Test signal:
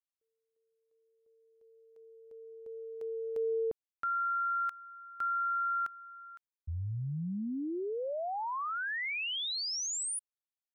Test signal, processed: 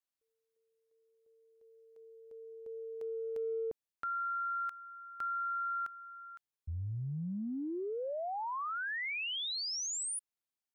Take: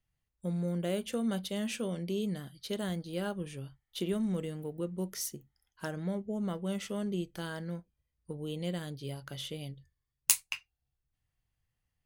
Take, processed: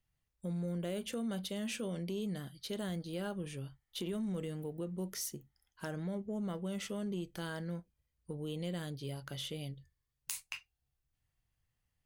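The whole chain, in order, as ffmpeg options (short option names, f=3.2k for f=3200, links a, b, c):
-af "acompressor=threshold=-34dB:ratio=6:attack=2.6:release=33:knee=6:detection=rms"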